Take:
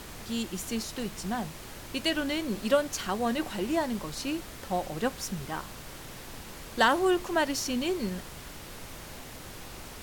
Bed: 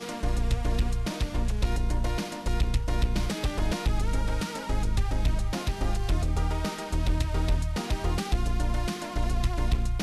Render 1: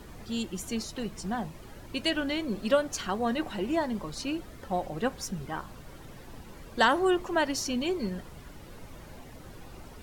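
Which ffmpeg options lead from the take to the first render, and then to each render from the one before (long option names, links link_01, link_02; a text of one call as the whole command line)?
ffmpeg -i in.wav -af "afftdn=noise_reduction=11:noise_floor=-44" out.wav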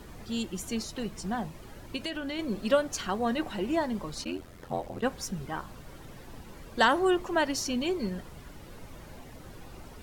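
ffmpeg -i in.wav -filter_complex "[0:a]asettb=1/sr,asplit=3[link_01][link_02][link_03];[link_01]atrim=end=1.964[link_04];[link_02]atrim=start=1.96:end=2.39,asetpts=PTS-STARTPTS,afade=type=in:duration=0.004:curve=qsin,afade=type=out:start_time=0.426:duration=0.004:curve=qsin,acompressor=threshold=-31dB:ratio=4:attack=3.2:release=140:knee=1:detection=peak[link_05];[link_03]atrim=start=2.386[link_06];[link_04][link_05]acrossfade=duration=0.004:curve1=hsin:curve2=qsin[link_07];[link_07][link_06]acrossfade=duration=0.004:curve1=qsin:curve2=hsin,asplit=3[link_08][link_09][link_10];[link_08]afade=type=out:start_time=4.24:duration=0.02[link_11];[link_09]aeval=exprs='val(0)*sin(2*PI*43*n/s)':channel_layout=same,afade=type=in:start_time=4.24:duration=0.02,afade=type=out:start_time=5.01:duration=0.02[link_12];[link_10]afade=type=in:start_time=5.01:duration=0.02[link_13];[link_11][link_12][link_13]amix=inputs=3:normalize=0" out.wav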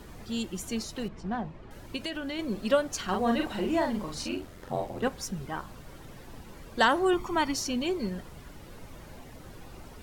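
ffmpeg -i in.wav -filter_complex "[0:a]asettb=1/sr,asplit=3[link_01][link_02][link_03];[link_01]atrim=end=1.084[link_04];[link_02]atrim=start=1.08:end=1.71,asetpts=PTS-STARTPTS,afade=type=in:duration=0.004:curve=qsin,afade=type=out:start_time=0.626:duration=0.004:curve=qsin,adynamicsmooth=sensitivity=2:basefreq=2700[link_05];[link_03]atrim=start=1.706[link_06];[link_04][link_05]acrossfade=duration=0.004:curve1=hsin:curve2=qsin[link_07];[link_07][link_06]acrossfade=duration=0.004:curve1=qsin:curve2=hsin,asettb=1/sr,asplit=3[link_08][link_09][link_10];[link_08]atrim=end=3.044[link_11];[link_09]atrim=start=3.04:end=5.08,asetpts=PTS-STARTPTS,afade=type=in:duration=0.004:curve=qsin,afade=type=out:start_time=2.036:duration=0.004:curve=qsin,asplit=2[link_12][link_13];[link_13]adelay=43,volume=-3dB[link_14];[link_12][link_14]amix=inputs=2:normalize=0,atrim=end_sample=89964[link_15];[link_10]atrim=start=5.076[link_16];[link_11][link_15]acrossfade=duration=0.004:curve1=hsin:curve2=qsin[link_17];[link_17][link_16]acrossfade=duration=0.004:curve1=qsin:curve2=hsin,asettb=1/sr,asplit=3[link_18][link_19][link_20];[link_18]atrim=end=7.134[link_21];[link_19]atrim=start=7.13:end=7.54,asetpts=PTS-STARTPTS,afade=type=in:duration=0.004:curve=qsin,afade=type=out:start_time=0.406:duration=0.004:curve=qsin,aecho=1:1:0.9:0.61,atrim=end_sample=18081[link_22];[link_20]atrim=start=7.536[link_23];[link_21][link_22]acrossfade=duration=0.004:curve1=hsin:curve2=qsin[link_24];[link_24][link_23]acrossfade=duration=0.004:curve1=qsin:curve2=hsin" out.wav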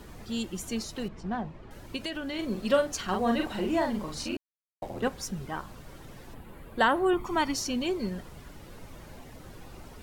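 ffmpeg -i in.wav -filter_complex "[0:a]asettb=1/sr,asplit=3[link_01][link_02][link_03];[link_01]atrim=end=2.294[link_04];[link_02]atrim=start=2.29:end=2.97,asetpts=PTS-STARTPTS,afade=type=in:duration=0.004:curve=qsin,afade=type=out:start_time=0.676:duration=0.004:curve=qsin,asplit=2[link_05][link_06];[link_06]adelay=43,volume=-8dB[link_07];[link_05][link_07]amix=inputs=2:normalize=0,atrim=end_sample=29988[link_08];[link_03]atrim=start=2.966[link_09];[link_04][link_08]acrossfade=duration=0.004:curve1=hsin:curve2=qsin[link_10];[link_10][link_09]acrossfade=duration=0.004:curve1=qsin:curve2=hsin,asettb=1/sr,asplit=3[link_11][link_12][link_13];[link_11]atrim=end=6.344[link_14];[link_12]atrim=start=6.34:end=7.25,asetpts=PTS-STARTPTS,afade=type=in:duration=0.004:curve=qsin,afade=type=out:start_time=0.906:duration=0.004:curve=qsin,equalizer=frequency=5700:width_type=o:width=0.94:gain=-14.5[link_15];[link_13]atrim=start=7.246[link_16];[link_14][link_15]acrossfade=duration=0.004:curve1=hsin:curve2=qsin[link_17];[link_17][link_16]acrossfade=duration=0.004:curve1=qsin:curve2=hsin,asplit=3[link_18][link_19][link_20];[link_18]atrim=end=4.37,asetpts=PTS-STARTPTS,afade=type=out:start_time=4.366:duration=0.004:curve=hsin[link_21];[link_19]atrim=start=4.37:end=4.82,asetpts=PTS-STARTPTS,volume=0[link_22];[link_20]atrim=start=4.82,asetpts=PTS-STARTPTS,afade=type=in:duration=0.004:curve=hsin[link_23];[link_21][link_22][link_23]concat=n=3:v=0:a=1" out.wav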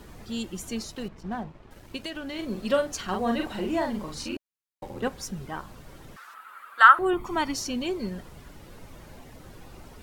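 ffmpeg -i in.wav -filter_complex "[0:a]asettb=1/sr,asplit=3[link_01][link_02][link_03];[link_01]atrim=end=0.924[link_04];[link_02]atrim=start=0.92:end=2.53,asetpts=PTS-STARTPTS,afade=type=in:duration=0.004:curve=qsin,afade=type=out:start_time=1.606:duration=0.004:curve=qsin,aeval=exprs='sgn(val(0))*max(abs(val(0))-0.00224,0)':channel_layout=same[link_05];[link_03]atrim=start=2.526[link_06];[link_04][link_05]acrossfade=duration=0.004:curve1=hsin:curve2=qsin[link_07];[link_07][link_06]acrossfade=duration=0.004:curve1=qsin:curve2=hsin,asettb=1/sr,asplit=3[link_08][link_09][link_10];[link_08]atrim=end=4.144[link_11];[link_09]atrim=start=4.14:end=5,asetpts=PTS-STARTPTS,afade=type=in:duration=0.004:curve=qsin,afade=type=out:start_time=0.856:duration=0.004:curve=qsin,asuperstop=centerf=670:order=4:qfactor=4.3[link_12];[link_10]atrim=start=4.996[link_13];[link_11][link_12]acrossfade=duration=0.004:curve1=hsin:curve2=qsin[link_14];[link_14][link_13]acrossfade=duration=0.004:curve1=qsin:curve2=hsin,asettb=1/sr,asplit=3[link_15][link_16][link_17];[link_15]atrim=end=6.164[link_18];[link_16]atrim=start=6.16:end=6.99,asetpts=PTS-STARTPTS,afade=type=in:duration=0.004:curve=qsin,afade=type=out:start_time=0.826:duration=0.004:curve=qsin,highpass=frequency=1300:width_type=q:width=11[link_19];[link_17]atrim=start=6.986[link_20];[link_18][link_19]acrossfade=duration=0.004:curve1=hsin:curve2=qsin[link_21];[link_21][link_20]acrossfade=duration=0.004:curve1=qsin:curve2=hsin" out.wav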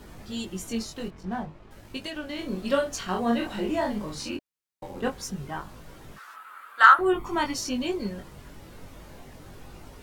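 ffmpeg -i in.wav -filter_complex "[0:a]flanger=delay=19.5:depth=2.5:speed=0.51,asplit=2[link_01][link_02];[link_02]asoftclip=type=tanh:threshold=-13dB,volume=-6dB[link_03];[link_01][link_03]amix=inputs=2:normalize=0" out.wav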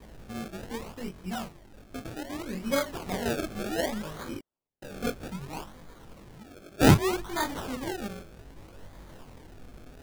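ffmpeg -i in.wav -af "flanger=delay=18:depth=5.8:speed=0.25,acrusher=samples=31:mix=1:aa=0.000001:lfo=1:lforange=31:lforate=0.64" out.wav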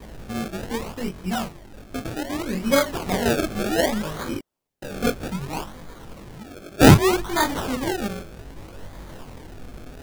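ffmpeg -i in.wav -af "volume=8.5dB,alimiter=limit=-2dB:level=0:latency=1" out.wav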